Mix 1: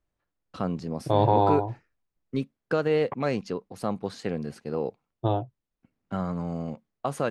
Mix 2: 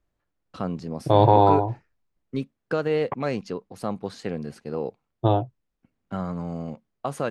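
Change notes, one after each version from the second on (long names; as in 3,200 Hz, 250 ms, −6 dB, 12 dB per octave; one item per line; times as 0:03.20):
second voice +5.0 dB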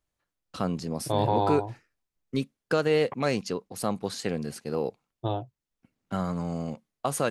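second voice −9.5 dB
master: remove low-pass filter 2,100 Hz 6 dB per octave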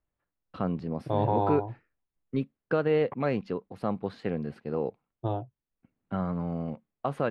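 master: add high-frequency loss of the air 470 metres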